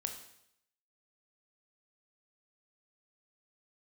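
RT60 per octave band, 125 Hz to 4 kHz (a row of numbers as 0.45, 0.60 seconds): 0.75, 0.75, 0.75, 0.75, 0.75, 0.75 seconds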